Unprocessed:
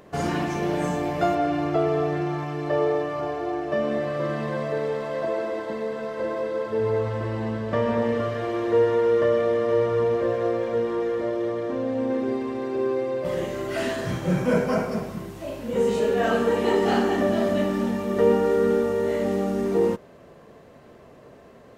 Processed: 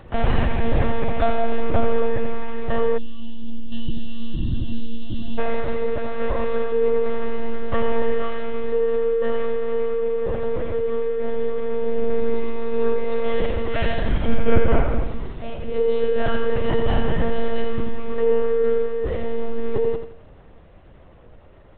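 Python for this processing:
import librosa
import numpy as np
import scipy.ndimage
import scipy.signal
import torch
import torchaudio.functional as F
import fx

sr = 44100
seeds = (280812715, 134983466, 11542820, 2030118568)

y = fx.high_shelf(x, sr, hz=2400.0, db=5.5)
y = fx.lpc_monotone(y, sr, seeds[0], pitch_hz=230.0, order=10)
y = fx.echo_feedback(y, sr, ms=85, feedback_pct=34, wet_db=-8.0)
y = fx.spec_box(y, sr, start_s=2.98, length_s=2.4, low_hz=350.0, high_hz=2700.0, gain_db=-27)
y = fx.rider(y, sr, range_db=5, speed_s=2.0)
y = fx.low_shelf(y, sr, hz=120.0, db=10.0)
y = y * 10.0 ** (-2.0 / 20.0)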